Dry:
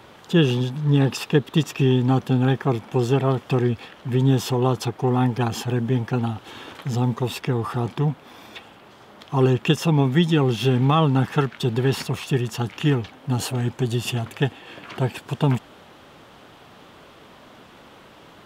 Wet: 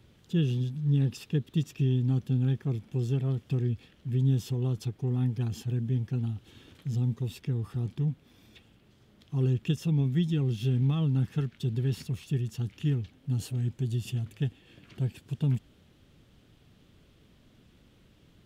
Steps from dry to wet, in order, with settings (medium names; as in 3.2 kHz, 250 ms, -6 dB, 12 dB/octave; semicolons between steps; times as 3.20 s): amplifier tone stack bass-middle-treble 10-0-1; trim +7.5 dB